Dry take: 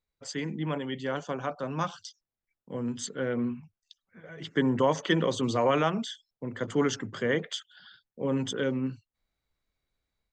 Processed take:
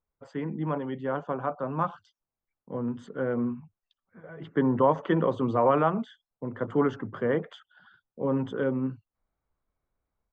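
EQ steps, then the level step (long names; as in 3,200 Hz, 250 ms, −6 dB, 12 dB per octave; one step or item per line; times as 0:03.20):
high shelf with overshoot 1,600 Hz −11 dB, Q 1.5
high shelf with overshoot 3,900 Hz −13 dB, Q 1.5
+1.0 dB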